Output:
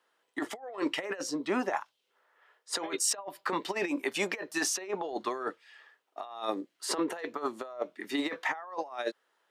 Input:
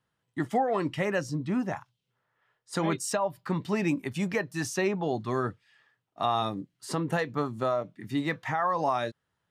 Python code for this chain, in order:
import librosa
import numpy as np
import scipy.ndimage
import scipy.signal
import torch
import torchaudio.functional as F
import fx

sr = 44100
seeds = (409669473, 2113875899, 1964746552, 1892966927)

y = scipy.signal.sosfilt(scipy.signal.butter(4, 360.0, 'highpass', fs=sr, output='sos'), x)
y = fx.high_shelf(y, sr, hz=6700.0, db=-4.5)
y = fx.over_compress(y, sr, threshold_db=-35.0, ratio=-0.5)
y = F.gain(torch.from_numpy(y), 3.0).numpy()